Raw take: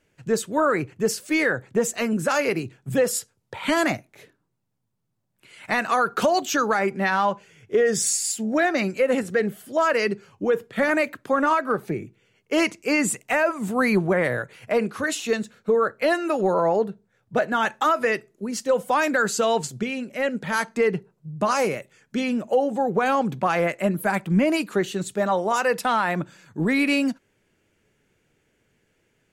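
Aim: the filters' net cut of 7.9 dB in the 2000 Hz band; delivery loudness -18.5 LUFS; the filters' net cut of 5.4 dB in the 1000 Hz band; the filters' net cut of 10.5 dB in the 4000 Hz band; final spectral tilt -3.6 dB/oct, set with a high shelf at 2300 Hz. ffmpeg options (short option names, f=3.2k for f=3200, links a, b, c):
-af "equalizer=f=1k:t=o:g=-4.5,equalizer=f=2k:t=o:g=-3.5,highshelf=f=2.3k:g=-8,equalizer=f=4k:t=o:g=-5,volume=7.5dB"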